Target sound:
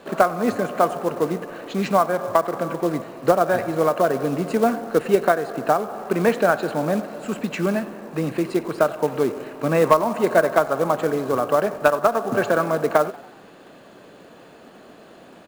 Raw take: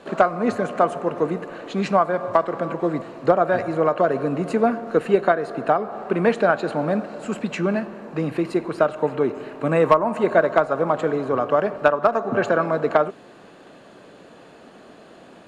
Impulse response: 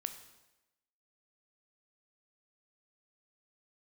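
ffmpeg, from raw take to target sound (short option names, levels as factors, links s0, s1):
-filter_complex "[0:a]asplit=5[s0][s1][s2][s3][s4];[s1]adelay=93,afreqshift=45,volume=0.0944[s5];[s2]adelay=186,afreqshift=90,volume=0.0501[s6];[s3]adelay=279,afreqshift=135,volume=0.0266[s7];[s4]adelay=372,afreqshift=180,volume=0.0141[s8];[s0][s5][s6][s7][s8]amix=inputs=5:normalize=0,acrusher=bits=5:mode=log:mix=0:aa=0.000001"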